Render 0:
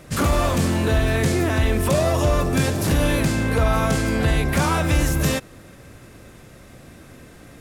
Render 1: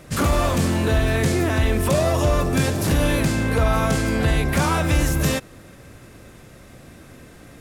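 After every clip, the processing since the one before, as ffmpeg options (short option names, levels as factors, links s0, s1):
-af anull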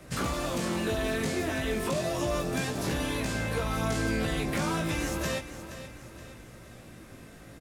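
-filter_complex "[0:a]acrossover=split=170|360|2900|7600[s0][s1][s2][s3][s4];[s0]acompressor=threshold=0.0224:ratio=4[s5];[s1]acompressor=threshold=0.0316:ratio=4[s6];[s2]acompressor=threshold=0.0398:ratio=4[s7];[s3]acompressor=threshold=0.0178:ratio=4[s8];[s4]acompressor=threshold=0.00708:ratio=4[s9];[s5][s6][s7][s8][s9]amix=inputs=5:normalize=0,flanger=delay=16:depth=2.8:speed=0.34,aecho=1:1:473|946|1419|1892:0.237|0.104|0.0459|0.0202,volume=0.841"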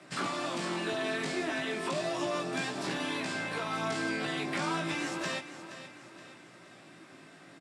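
-af "highpass=f=180:w=0.5412,highpass=f=180:w=1.3066,equalizer=f=220:t=q:w=4:g=-10,equalizer=f=490:t=q:w=4:g=-10,equalizer=f=6400:t=q:w=4:g=-7,lowpass=f=8100:w=0.5412,lowpass=f=8100:w=1.3066"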